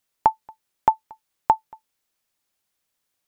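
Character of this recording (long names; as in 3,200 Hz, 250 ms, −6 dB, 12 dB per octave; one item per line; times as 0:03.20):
background noise floor −78 dBFS
spectral slope −4.0 dB per octave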